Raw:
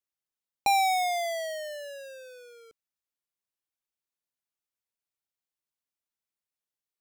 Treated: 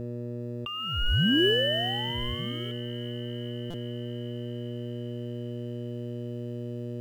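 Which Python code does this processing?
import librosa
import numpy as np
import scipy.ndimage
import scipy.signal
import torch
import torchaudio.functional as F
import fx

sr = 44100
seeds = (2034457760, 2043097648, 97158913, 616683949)

p1 = fx.freq_invert(x, sr, carrier_hz=3600)
p2 = fx.low_shelf(p1, sr, hz=410.0, db=7.5)
p3 = fx.dmg_buzz(p2, sr, base_hz=120.0, harmonics=5, level_db=-57.0, tilt_db=-3, odd_only=False)
p4 = fx.quant_companded(p3, sr, bits=4)
p5 = p3 + F.gain(torch.from_numpy(p4), -11.0).numpy()
p6 = fx.over_compress(p5, sr, threshold_db=-31.0, ratio=-1.0)
p7 = fx.tilt_shelf(p6, sr, db=8.5, hz=1100.0)
p8 = p7 + fx.echo_wet_highpass(p7, sr, ms=400, feedback_pct=76, hz=2200.0, wet_db=-13, dry=0)
p9 = fx.buffer_glitch(p8, sr, at_s=(3.7,), block=256, repeats=6)
y = F.gain(torch.from_numpy(p9), 7.5).numpy()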